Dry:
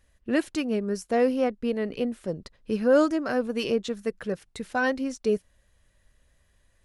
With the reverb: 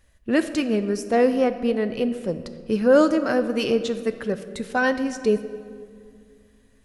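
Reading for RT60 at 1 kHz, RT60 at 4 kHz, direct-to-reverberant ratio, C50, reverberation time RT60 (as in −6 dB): 2.0 s, 1.3 s, 10.0 dB, 11.5 dB, 2.2 s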